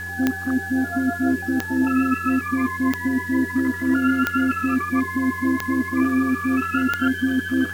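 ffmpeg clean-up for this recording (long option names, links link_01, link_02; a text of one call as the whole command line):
ffmpeg -i in.wav -af "adeclick=threshold=4,bandreject=frequency=90.6:width_type=h:width=4,bandreject=frequency=181.2:width_type=h:width=4,bandreject=frequency=271.8:width_type=h:width=4,bandreject=frequency=362.4:width_type=h:width=4,bandreject=frequency=453:width_type=h:width=4,bandreject=frequency=1700:width=30,afwtdn=0.005" out.wav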